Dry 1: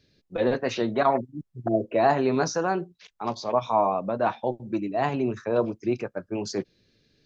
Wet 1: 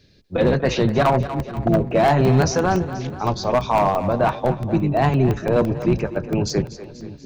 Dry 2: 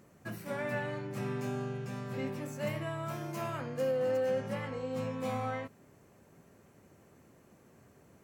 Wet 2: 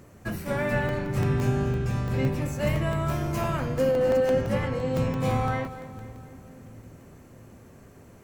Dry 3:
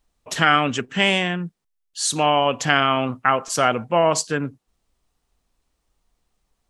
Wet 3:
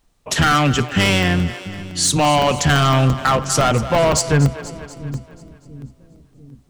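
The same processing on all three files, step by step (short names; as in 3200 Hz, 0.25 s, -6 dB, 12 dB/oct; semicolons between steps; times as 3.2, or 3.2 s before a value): octaver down 1 oct, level -1 dB; overloaded stage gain 16.5 dB; on a send: split-band echo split 330 Hz, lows 0.692 s, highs 0.242 s, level -14.5 dB; on the sum: dynamic EQ 140 Hz, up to +7 dB, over -45 dBFS, Q 3.4; in parallel at -1 dB: compressor, threshold -26 dBFS; on the sum: crackling interface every 0.17 s, samples 64, zero, from 0.89; gain +2.5 dB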